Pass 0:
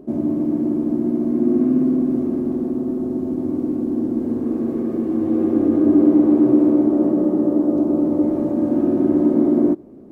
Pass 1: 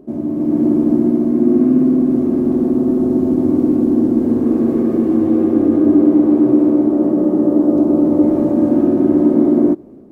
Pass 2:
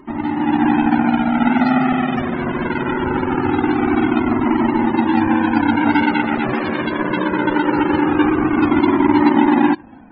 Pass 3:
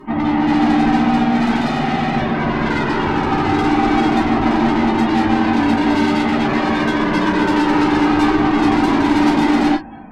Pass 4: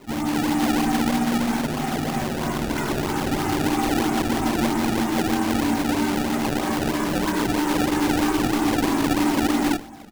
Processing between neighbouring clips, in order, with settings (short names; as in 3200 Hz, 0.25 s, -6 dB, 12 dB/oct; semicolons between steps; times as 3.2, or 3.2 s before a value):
AGC gain up to 11.5 dB; gain -1 dB
half-waves squared off; loudest bins only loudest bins 64; cascading flanger falling 0.22 Hz
tube stage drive 19 dB, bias 0.3; non-linear reverb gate 80 ms falling, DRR -7 dB
feedback echo 97 ms, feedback 35%, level -18.5 dB; decimation with a swept rate 24×, swing 160% 3.1 Hz; gain -7 dB